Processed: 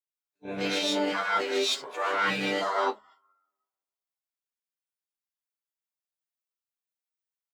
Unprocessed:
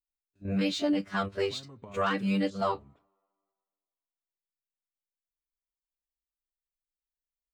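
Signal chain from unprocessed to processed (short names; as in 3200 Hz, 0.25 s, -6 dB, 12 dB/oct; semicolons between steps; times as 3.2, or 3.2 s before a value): HPF 540 Hz 12 dB/oct; non-linear reverb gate 0.18 s rising, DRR -6.5 dB; reverse; compressor 6:1, threshold -33 dBFS, peak gain reduction 14.5 dB; reverse; harmoniser -7 st -13 dB, +7 st -10 dB; spectral noise reduction 17 dB; gain +7.5 dB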